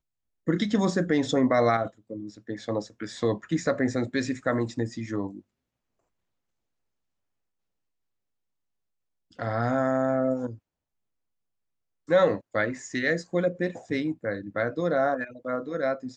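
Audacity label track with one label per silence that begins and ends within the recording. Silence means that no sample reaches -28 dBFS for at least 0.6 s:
5.270000	9.390000	silence
10.500000	12.100000	silence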